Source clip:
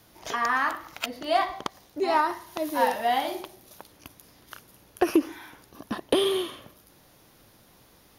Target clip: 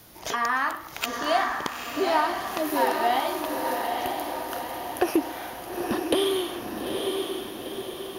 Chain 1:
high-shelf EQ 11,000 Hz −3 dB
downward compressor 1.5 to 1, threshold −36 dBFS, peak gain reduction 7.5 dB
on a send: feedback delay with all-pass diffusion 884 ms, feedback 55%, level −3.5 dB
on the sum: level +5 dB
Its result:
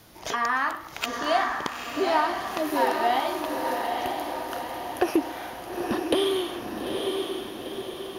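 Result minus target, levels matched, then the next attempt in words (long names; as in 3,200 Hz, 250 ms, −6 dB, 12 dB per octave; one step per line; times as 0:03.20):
8,000 Hz band −3.0 dB
high-shelf EQ 11,000 Hz +6.5 dB
downward compressor 1.5 to 1, threshold −36 dBFS, peak gain reduction 7.5 dB
on a send: feedback delay with all-pass diffusion 884 ms, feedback 55%, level −3.5 dB
on the sum: level +5 dB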